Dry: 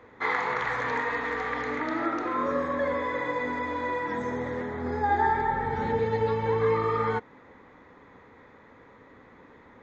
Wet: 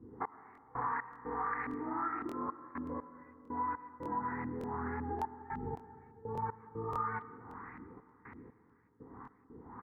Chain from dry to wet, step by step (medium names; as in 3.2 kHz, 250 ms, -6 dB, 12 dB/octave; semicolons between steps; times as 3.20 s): high-pass 41 Hz; treble shelf 3.1 kHz -12 dB; static phaser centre 1.4 kHz, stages 4; speakerphone echo 160 ms, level -19 dB; LFO low-pass saw up 1.8 Hz 260–2900 Hz; compression 6:1, threshold -42 dBFS, peak gain reduction 20 dB; dynamic bell 940 Hz, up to +5 dB, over -56 dBFS, Q 1.1; trance gate "x..x.xxxxx." 60 bpm -24 dB; algorithmic reverb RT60 3 s, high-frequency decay 0.3×, pre-delay 65 ms, DRR 14.5 dB; crackling interface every 0.58 s, samples 1024, repeat, from 0.53 s; trim +4 dB